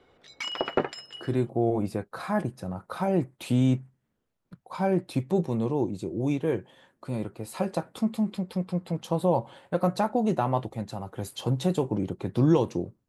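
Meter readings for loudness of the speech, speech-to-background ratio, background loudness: −28.5 LKFS, 3.0 dB, −31.5 LKFS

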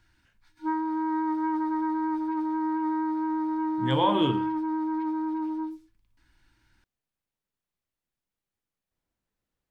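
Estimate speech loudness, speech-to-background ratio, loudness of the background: −27.5 LKFS, 1.5 dB, −29.0 LKFS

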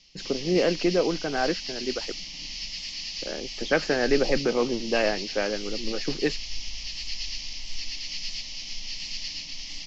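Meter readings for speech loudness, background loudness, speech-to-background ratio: −27.0 LKFS, −33.5 LKFS, 6.5 dB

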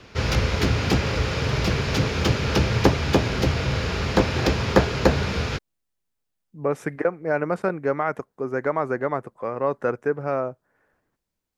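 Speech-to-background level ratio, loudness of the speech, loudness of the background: −4.0 dB, −26.5 LKFS, −22.5 LKFS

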